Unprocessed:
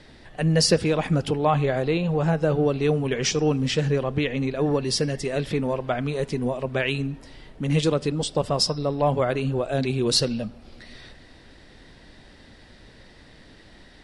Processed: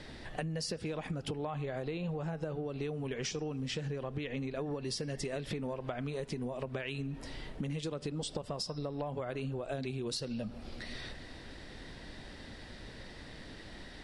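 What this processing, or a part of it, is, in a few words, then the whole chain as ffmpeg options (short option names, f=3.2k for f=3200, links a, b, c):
serial compression, peaks first: -af "acompressor=threshold=-30dB:ratio=6,acompressor=threshold=-35dB:ratio=6,volume=1dB"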